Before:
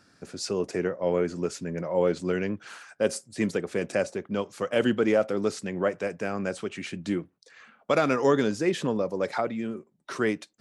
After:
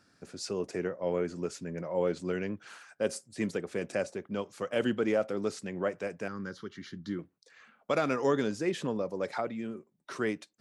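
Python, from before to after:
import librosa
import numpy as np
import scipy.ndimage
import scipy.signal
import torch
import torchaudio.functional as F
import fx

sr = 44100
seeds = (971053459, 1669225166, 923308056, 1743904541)

y = fx.fixed_phaser(x, sr, hz=2500.0, stages=6, at=(6.28, 7.19))
y = y * 10.0 ** (-5.5 / 20.0)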